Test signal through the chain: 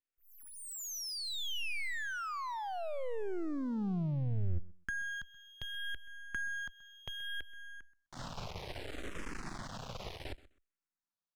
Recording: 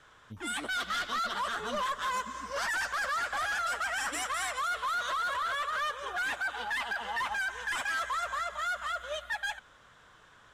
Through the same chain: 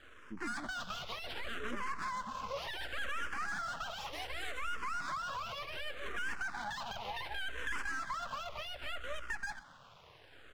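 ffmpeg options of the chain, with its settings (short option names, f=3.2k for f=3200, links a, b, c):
-filter_complex "[0:a]lowpass=8.5k,aemphasis=mode=reproduction:type=50fm,acrossover=split=200[a][b];[b]acompressor=threshold=-39dB:ratio=6[c];[a][c]amix=inputs=2:normalize=0,aeval=exprs='max(val(0),0)':c=same,asplit=2[d][e];[e]aecho=0:1:128|256:0.106|0.0191[f];[d][f]amix=inputs=2:normalize=0,asplit=2[g][h];[h]afreqshift=-0.67[i];[g][i]amix=inputs=2:normalize=1,volume=8dB"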